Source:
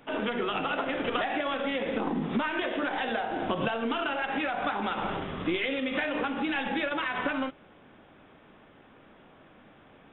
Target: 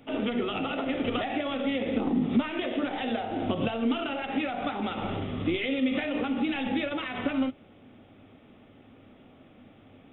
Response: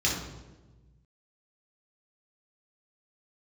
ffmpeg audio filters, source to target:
-af "equalizer=f=100:t=o:w=0.33:g=12,equalizer=f=250:t=o:w=0.33:g=8,equalizer=f=1000:t=o:w=0.33:g=-9,equalizer=f=1600:t=o:w=0.33:g=-10"

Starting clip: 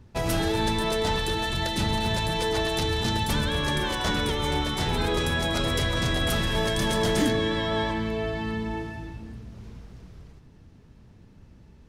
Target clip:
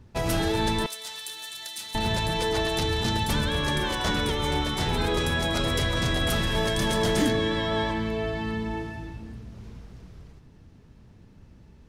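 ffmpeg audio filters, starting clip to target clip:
-filter_complex "[0:a]asettb=1/sr,asplit=3[s0][s1][s2];[s0]atrim=end=0.864[s3];[s1]atrim=start=0.86:end=1.95,asetpts=PTS-STARTPTS,afade=t=in:d=0.004:c=qsin,afade=t=out:st=1.086:d=0.004:c=qsin,aderivative[s4];[s2]atrim=start=1.946[s5];[s3][s4]acrossfade=d=0.004:c1=hsin:c2=qsin[s6];[s6][s5]acrossfade=d=0.004:c1=qsin:c2=hsin"

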